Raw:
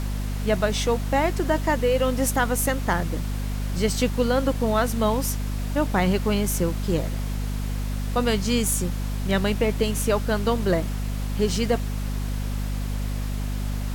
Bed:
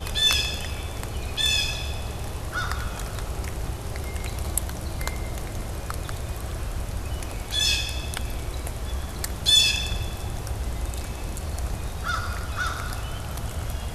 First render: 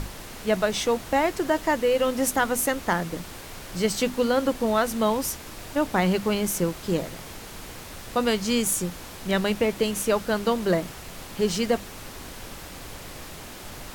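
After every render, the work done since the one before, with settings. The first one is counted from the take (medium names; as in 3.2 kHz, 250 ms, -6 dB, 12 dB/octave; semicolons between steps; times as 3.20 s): hum notches 50/100/150/200/250 Hz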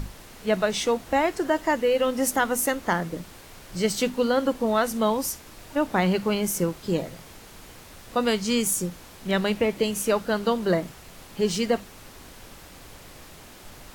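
noise print and reduce 6 dB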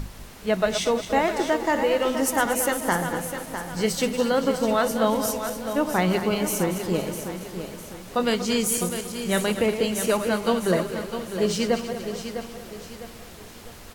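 backward echo that repeats 117 ms, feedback 66%, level -9 dB; on a send: feedback delay 654 ms, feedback 40%, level -9.5 dB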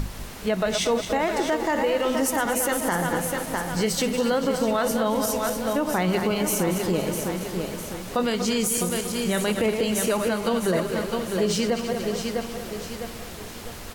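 in parallel at -1 dB: compression, threshold -30 dBFS, peak gain reduction 13.5 dB; on the sum: peak limiter -14 dBFS, peak gain reduction 7.5 dB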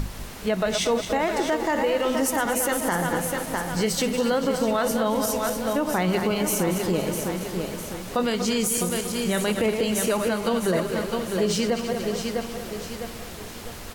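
no audible change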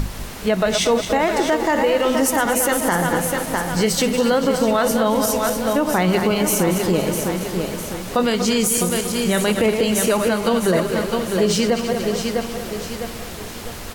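trim +5.5 dB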